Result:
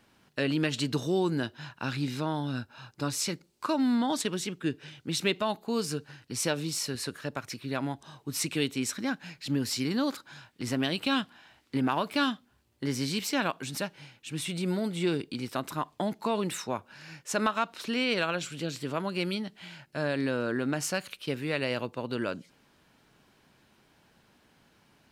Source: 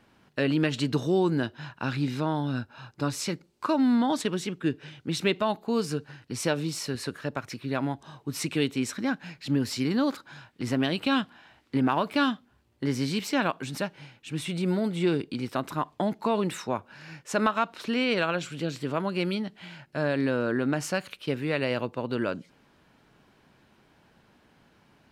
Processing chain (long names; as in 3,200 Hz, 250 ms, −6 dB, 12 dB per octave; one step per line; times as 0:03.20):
high-shelf EQ 3,600 Hz +8.5 dB
level −3.5 dB